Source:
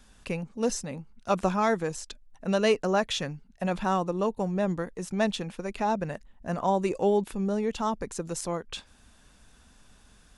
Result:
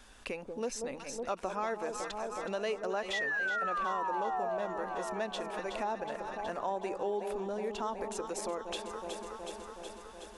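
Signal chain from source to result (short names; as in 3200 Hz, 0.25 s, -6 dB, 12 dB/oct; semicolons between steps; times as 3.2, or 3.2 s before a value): painted sound fall, 3.13–4.59, 620–2000 Hz -26 dBFS; tone controls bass -7 dB, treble -4 dB; on a send: echo with dull and thin repeats by turns 0.185 s, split 920 Hz, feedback 82%, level -9.5 dB; on the sum: compressor 2.5:1, threshold -40 dBFS, peak gain reduction 14 dB; in parallel at -3 dB: limiter -33 dBFS, peak gain reduction 8.5 dB; on the sum: bell 160 Hz -15 dB 0.49 oct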